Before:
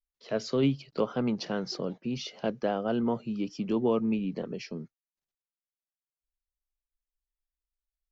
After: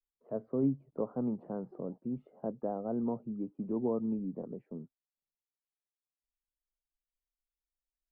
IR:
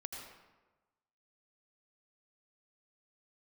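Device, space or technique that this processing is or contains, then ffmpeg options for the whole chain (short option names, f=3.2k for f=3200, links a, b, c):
under water: -af "lowpass=f=960:w=0.5412,lowpass=f=960:w=1.3066,equalizer=f=260:t=o:w=0.25:g=4.5,volume=-6.5dB"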